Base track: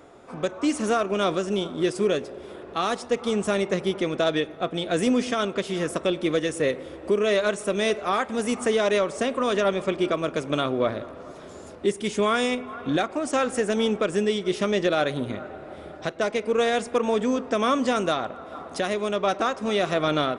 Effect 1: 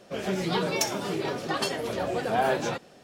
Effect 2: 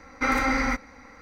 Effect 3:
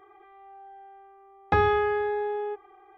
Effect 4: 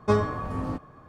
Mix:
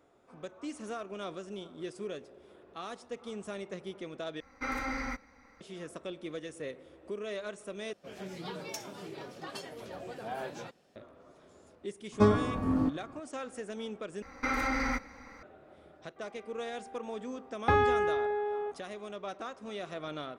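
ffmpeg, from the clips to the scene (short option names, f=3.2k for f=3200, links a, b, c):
-filter_complex "[2:a]asplit=2[a][b];[0:a]volume=-16.5dB[c];[4:a]equalizer=f=270:t=o:w=0.77:g=10.5[d];[b]acompressor=threshold=-24dB:ratio=6:attack=3.2:release=140:knee=1:detection=peak[e];[c]asplit=4[f][g][h][i];[f]atrim=end=4.404[j];[a]atrim=end=1.21,asetpts=PTS-STARTPTS,volume=-11.5dB[k];[g]atrim=start=5.606:end=7.934[l];[1:a]atrim=end=3.03,asetpts=PTS-STARTPTS,volume=-14dB[m];[h]atrim=start=10.956:end=14.224[n];[e]atrim=end=1.21,asetpts=PTS-STARTPTS,volume=-2.5dB[o];[i]atrim=start=15.426[p];[d]atrim=end=1.08,asetpts=PTS-STARTPTS,volume=-4dB,afade=t=in:d=0.004:c=hsin,afade=t=out:st=1.076:d=0.004:c=hsin,adelay=12120[q];[3:a]atrim=end=2.97,asetpts=PTS-STARTPTS,volume=-3.5dB,afade=t=in:d=0.004:c=hsin,afade=t=out:st=2.966:d=0.004:c=hsin,adelay=16160[r];[j][k]acrossfade=d=0.004:c1=hsin:c2=hsin[s];[s][l]acrossfade=d=0.004:c1=hsin:c2=hsin[t];[t][m]acrossfade=d=0.004:c1=hsin:c2=hsin[u];[u][n]acrossfade=d=0.004:c1=hsin:c2=hsin[v];[v][o]acrossfade=d=0.004:c1=hsin:c2=hsin[w];[w][p]acrossfade=d=0.004:c1=hsin:c2=hsin[x];[x][q][r]amix=inputs=3:normalize=0"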